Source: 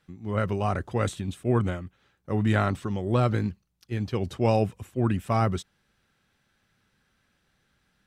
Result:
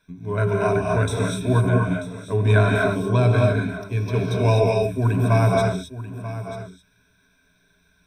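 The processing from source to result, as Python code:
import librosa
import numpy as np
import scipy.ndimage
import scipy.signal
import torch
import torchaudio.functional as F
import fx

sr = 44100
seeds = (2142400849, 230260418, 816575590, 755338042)

y = fx.ripple_eq(x, sr, per_octave=1.6, db=18)
y = y + 10.0 ** (-13.5 / 20.0) * np.pad(y, (int(938 * sr / 1000.0), 0))[:len(y)]
y = fx.rev_gated(y, sr, seeds[0], gate_ms=280, shape='rising', drr_db=-1.0)
y = fx.end_taper(y, sr, db_per_s=150.0)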